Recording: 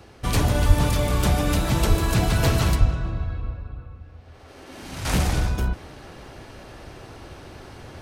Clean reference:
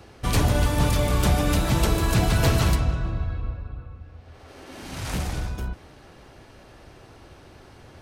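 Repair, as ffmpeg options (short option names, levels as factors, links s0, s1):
-filter_complex "[0:a]asplit=3[s0][s1][s2];[s0]afade=t=out:st=0.67:d=0.02[s3];[s1]highpass=f=140:w=0.5412,highpass=f=140:w=1.3066,afade=t=in:st=0.67:d=0.02,afade=t=out:st=0.79:d=0.02[s4];[s2]afade=t=in:st=0.79:d=0.02[s5];[s3][s4][s5]amix=inputs=3:normalize=0,asplit=3[s6][s7][s8];[s6]afade=t=out:st=1.88:d=0.02[s9];[s7]highpass=f=140:w=0.5412,highpass=f=140:w=1.3066,afade=t=in:st=1.88:d=0.02,afade=t=out:st=2:d=0.02[s10];[s8]afade=t=in:st=2:d=0.02[s11];[s9][s10][s11]amix=inputs=3:normalize=0,asplit=3[s12][s13][s14];[s12]afade=t=out:st=2.79:d=0.02[s15];[s13]highpass=f=140:w=0.5412,highpass=f=140:w=1.3066,afade=t=in:st=2.79:d=0.02,afade=t=out:st=2.91:d=0.02[s16];[s14]afade=t=in:st=2.91:d=0.02[s17];[s15][s16][s17]amix=inputs=3:normalize=0,asetnsamples=n=441:p=0,asendcmd='5.05 volume volume -6.5dB',volume=1"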